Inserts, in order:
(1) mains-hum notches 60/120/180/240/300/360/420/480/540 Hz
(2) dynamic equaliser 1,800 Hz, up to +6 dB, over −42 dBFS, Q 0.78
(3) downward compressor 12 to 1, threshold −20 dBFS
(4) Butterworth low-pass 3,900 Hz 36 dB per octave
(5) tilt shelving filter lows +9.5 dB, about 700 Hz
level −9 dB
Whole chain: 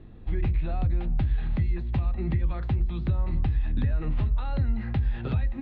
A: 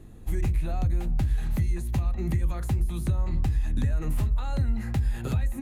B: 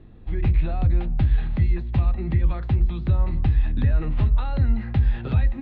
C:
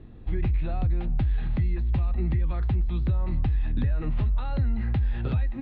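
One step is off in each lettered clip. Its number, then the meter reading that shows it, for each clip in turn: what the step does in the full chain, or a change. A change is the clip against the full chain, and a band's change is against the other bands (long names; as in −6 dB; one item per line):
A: 4, 4 kHz band +2.0 dB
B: 3, average gain reduction 4.0 dB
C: 1, change in crest factor −1.5 dB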